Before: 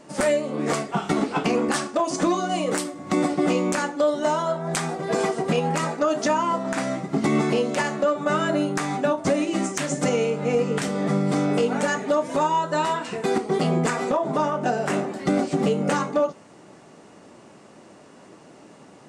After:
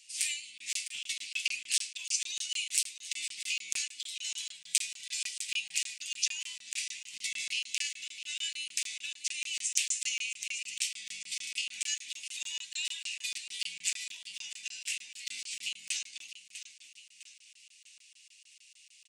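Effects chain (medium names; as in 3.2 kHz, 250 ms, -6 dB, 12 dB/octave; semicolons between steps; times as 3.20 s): elliptic high-pass 2.5 kHz, stop band 50 dB; feedback delay 655 ms, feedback 44%, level -12 dB; crackling interface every 0.15 s, samples 1024, zero, from 0.58 s; trim +2.5 dB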